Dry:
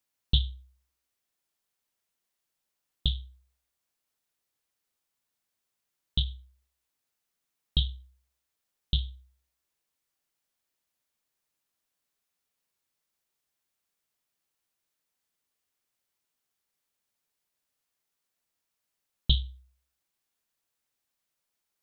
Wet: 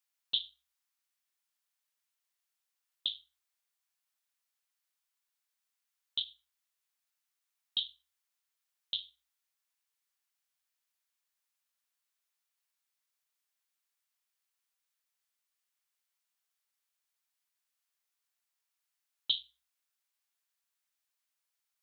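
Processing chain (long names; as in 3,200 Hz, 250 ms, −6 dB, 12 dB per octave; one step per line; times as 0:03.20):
high-pass filter 970 Hz 12 dB per octave
level −2.5 dB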